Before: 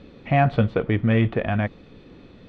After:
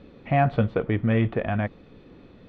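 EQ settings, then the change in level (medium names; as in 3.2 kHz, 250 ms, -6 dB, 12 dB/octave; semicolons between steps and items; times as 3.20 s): bass shelf 490 Hz -3 dB; treble shelf 2.3 kHz -8 dB; 0.0 dB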